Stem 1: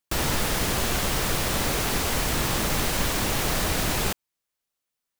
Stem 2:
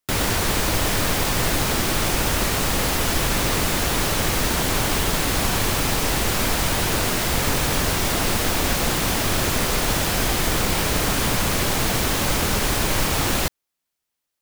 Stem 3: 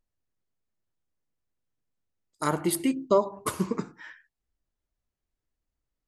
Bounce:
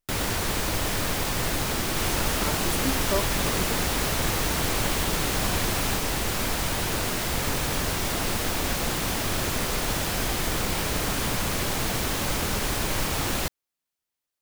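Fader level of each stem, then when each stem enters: -6.0, -5.5, -6.5 dB; 1.85, 0.00, 0.00 s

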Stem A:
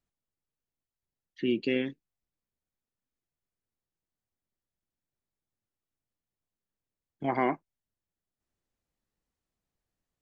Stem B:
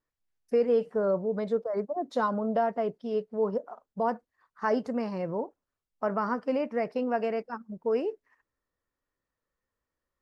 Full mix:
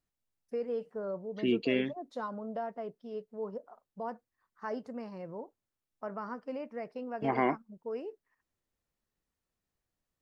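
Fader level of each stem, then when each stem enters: -1.0, -10.5 dB; 0.00, 0.00 s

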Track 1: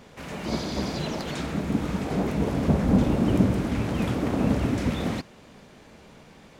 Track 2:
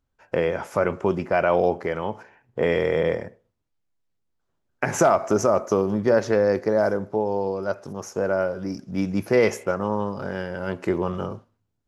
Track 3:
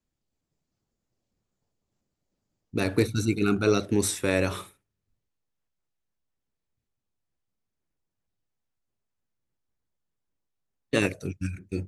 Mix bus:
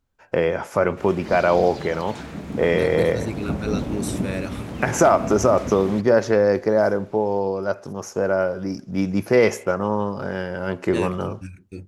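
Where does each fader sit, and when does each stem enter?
-5.0, +2.5, -5.5 dB; 0.80, 0.00, 0.00 s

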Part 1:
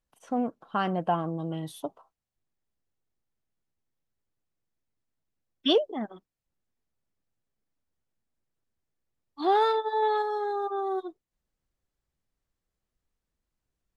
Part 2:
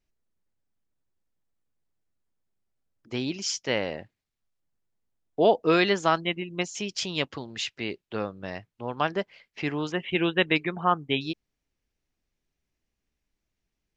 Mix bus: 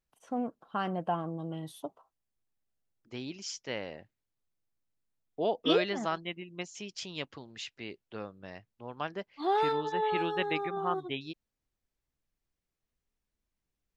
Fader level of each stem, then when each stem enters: -5.0, -10.0 dB; 0.00, 0.00 s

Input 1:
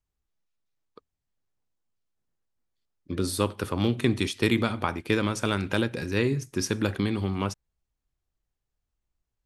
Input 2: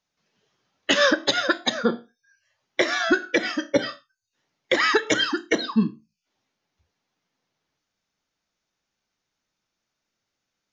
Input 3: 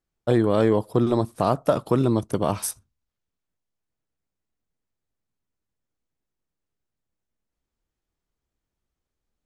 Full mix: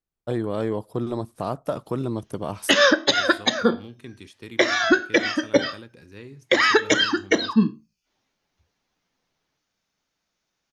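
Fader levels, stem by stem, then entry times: -17.0, +2.5, -6.5 dB; 0.00, 1.80, 0.00 s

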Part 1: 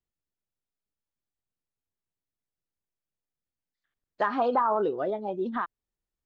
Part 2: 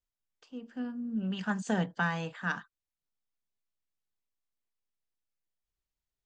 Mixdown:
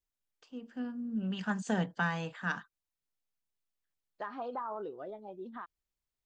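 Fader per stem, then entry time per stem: -14.0, -1.5 dB; 0.00, 0.00 s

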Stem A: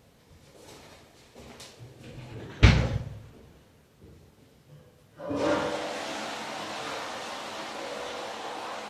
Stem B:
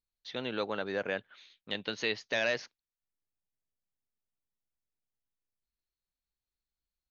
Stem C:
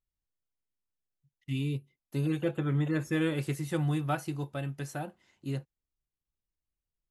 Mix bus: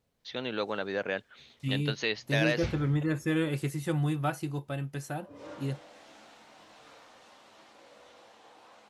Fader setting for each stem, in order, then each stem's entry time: -19.0, +1.5, +0.5 dB; 0.00, 0.00, 0.15 s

